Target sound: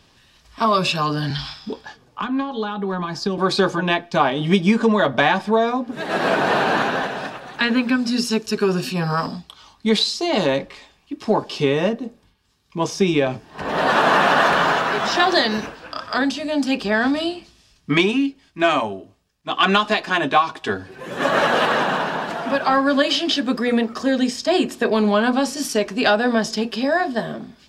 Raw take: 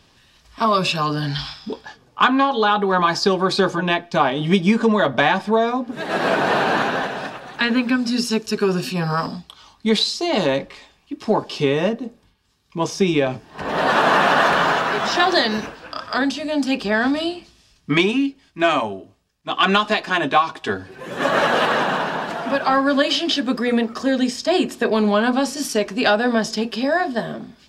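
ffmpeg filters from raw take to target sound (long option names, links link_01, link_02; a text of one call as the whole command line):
ffmpeg -i in.wav -filter_complex "[0:a]asettb=1/sr,asplit=3[link_01][link_02][link_03];[link_01]atrim=end=1.304[link_04];[link_02]atrim=start=1.3:end=3.38,asetpts=PTS-STARTPTS,afade=type=in:duration=0.004:curve=qsin,afade=type=out:start_time=2.076:duration=0.004:curve=qsin,acrossover=split=280[link_05][link_06];[link_06]acompressor=threshold=-25dB:ratio=10[link_07];[link_05][link_07]amix=inputs=2:normalize=0[link_08];[link_03]atrim=start=3.376[link_09];[link_04][link_08]acrossfade=duration=0.004:curve1=hsin:curve2=qsin[link_10];[link_10][link_09]acrossfade=duration=0.004:curve1=qsin:curve2=hsin" out.wav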